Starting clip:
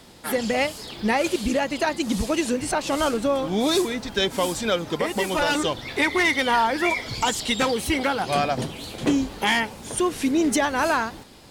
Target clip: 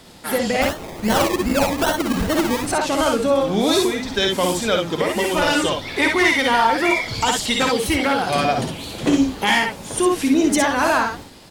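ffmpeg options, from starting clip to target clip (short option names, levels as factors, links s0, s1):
-filter_complex "[0:a]asplit=3[s0][s1][s2];[s0]afade=t=out:st=0.61:d=0.02[s3];[s1]acrusher=samples=25:mix=1:aa=0.000001:lfo=1:lforange=15:lforate=2.5,afade=t=in:st=0.61:d=0.02,afade=t=out:st=2.66:d=0.02[s4];[s2]afade=t=in:st=2.66:d=0.02[s5];[s3][s4][s5]amix=inputs=3:normalize=0,aecho=1:1:55|66:0.531|0.501,volume=1.33"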